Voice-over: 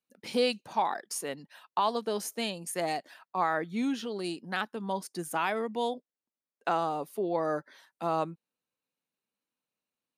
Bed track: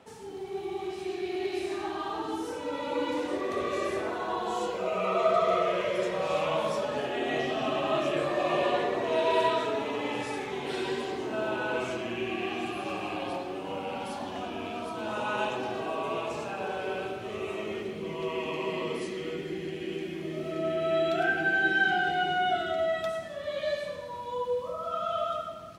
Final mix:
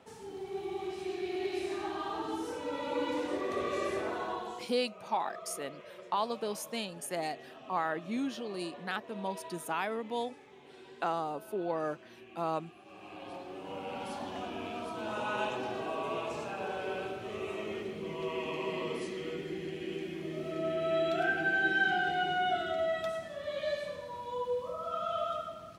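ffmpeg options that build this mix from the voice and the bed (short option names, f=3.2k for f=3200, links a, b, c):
-filter_complex "[0:a]adelay=4350,volume=-4dB[a];[1:a]volume=14.5dB,afade=t=out:st=4.2:d=0.49:silence=0.125893,afade=t=in:st=12.86:d=1.27:silence=0.133352[b];[a][b]amix=inputs=2:normalize=0"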